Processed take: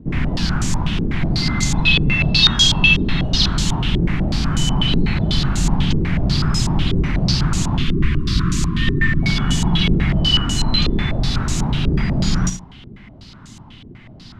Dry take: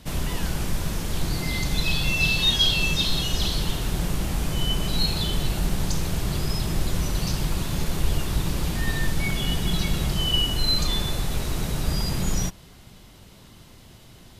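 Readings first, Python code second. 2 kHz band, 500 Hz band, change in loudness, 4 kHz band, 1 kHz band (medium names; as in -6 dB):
+8.5 dB, +4.5 dB, +7.5 dB, +6.0 dB, +6.5 dB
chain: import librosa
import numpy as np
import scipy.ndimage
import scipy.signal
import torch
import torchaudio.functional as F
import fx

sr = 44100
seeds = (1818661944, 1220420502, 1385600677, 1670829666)

p1 = fx.spec_erase(x, sr, start_s=7.78, length_s=1.44, low_hz=430.0, high_hz=980.0)
p2 = fx.graphic_eq_10(p1, sr, hz=(125, 250, 500), db=(4, 7, -10))
p3 = p2 + fx.echo_feedback(p2, sr, ms=71, feedback_pct=24, wet_db=-9.5, dry=0)
p4 = fx.filter_held_lowpass(p3, sr, hz=8.1, low_hz=410.0, high_hz=7000.0)
y = F.gain(torch.from_numpy(p4), 4.5).numpy()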